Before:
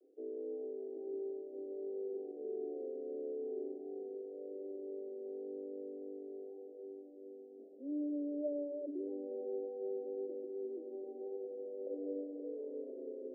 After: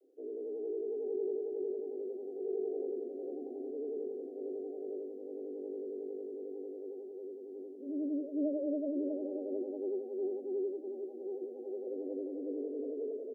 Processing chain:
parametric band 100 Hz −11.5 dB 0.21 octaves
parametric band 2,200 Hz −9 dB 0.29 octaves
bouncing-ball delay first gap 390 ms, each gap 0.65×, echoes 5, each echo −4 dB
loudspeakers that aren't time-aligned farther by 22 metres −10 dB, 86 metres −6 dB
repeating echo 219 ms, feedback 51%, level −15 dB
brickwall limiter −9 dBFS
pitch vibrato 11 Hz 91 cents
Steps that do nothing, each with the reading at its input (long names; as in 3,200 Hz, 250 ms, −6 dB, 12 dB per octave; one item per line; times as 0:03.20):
parametric band 100 Hz: nothing at its input below 240 Hz
parametric band 2,200 Hz: nothing at its input above 640 Hz
brickwall limiter −9 dBFS: peak of its input −24.5 dBFS